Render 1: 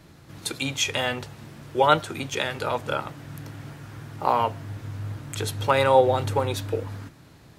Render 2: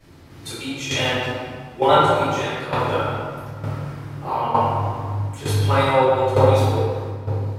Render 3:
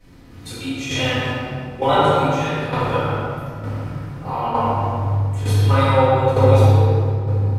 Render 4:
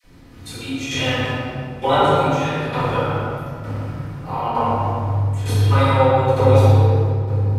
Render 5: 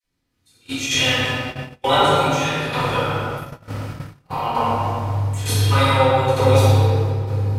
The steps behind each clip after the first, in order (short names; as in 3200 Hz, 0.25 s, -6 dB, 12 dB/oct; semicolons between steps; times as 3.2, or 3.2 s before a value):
reverb RT60 2.7 s, pre-delay 3 ms, DRR -15 dB; tremolo saw down 1.1 Hz, depth 65%; gain -9.5 dB
low shelf 150 Hz +6 dB; shoebox room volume 1300 m³, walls mixed, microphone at 1.9 m; gain -3.5 dB
dispersion lows, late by 40 ms, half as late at 840 Hz
gate -27 dBFS, range -28 dB; high shelf 2100 Hz +11.5 dB; gain -2 dB